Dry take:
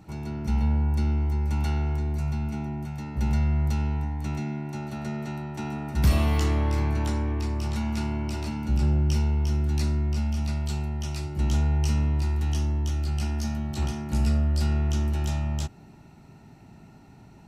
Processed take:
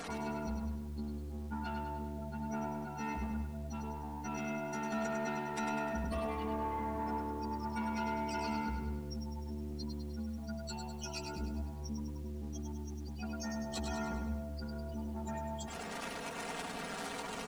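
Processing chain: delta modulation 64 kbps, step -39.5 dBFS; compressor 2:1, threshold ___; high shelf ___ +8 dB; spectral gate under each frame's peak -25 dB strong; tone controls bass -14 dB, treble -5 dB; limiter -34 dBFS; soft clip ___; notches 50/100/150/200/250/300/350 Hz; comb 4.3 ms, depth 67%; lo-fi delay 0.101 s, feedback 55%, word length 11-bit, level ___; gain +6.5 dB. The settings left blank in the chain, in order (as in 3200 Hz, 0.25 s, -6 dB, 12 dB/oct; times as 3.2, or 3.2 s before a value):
-35 dBFS, 6000 Hz, -38.5 dBFS, -5 dB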